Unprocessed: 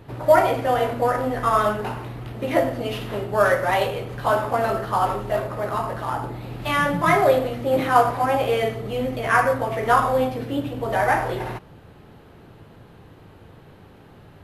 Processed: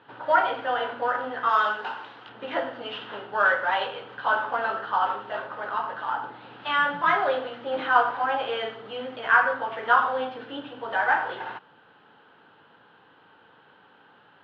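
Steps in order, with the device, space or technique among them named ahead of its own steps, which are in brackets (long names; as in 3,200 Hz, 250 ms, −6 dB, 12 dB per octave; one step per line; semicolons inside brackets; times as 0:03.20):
phone earpiece (loudspeaker in its box 360–3,800 Hz, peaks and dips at 370 Hz −7 dB, 630 Hz −6 dB, 900 Hz +5 dB, 1,500 Hz +10 dB, 2,200 Hz −5 dB, 3,100 Hz +7 dB)
0:01.49–0:02.29: bass and treble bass −8 dB, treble +11 dB
level −5 dB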